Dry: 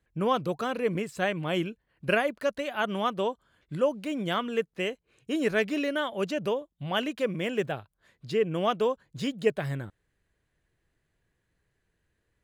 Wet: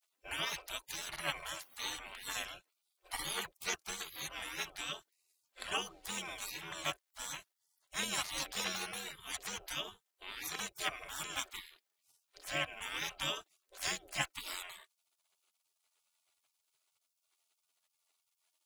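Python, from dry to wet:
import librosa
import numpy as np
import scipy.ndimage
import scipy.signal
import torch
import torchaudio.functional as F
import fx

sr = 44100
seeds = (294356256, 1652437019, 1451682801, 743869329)

y = fx.stretch_grains(x, sr, factor=1.5, grain_ms=23.0)
y = fx.spec_gate(y, sr, threshold_db=-30, keep='weak')
y = y * 10.0 ** (11.5 / 20.0)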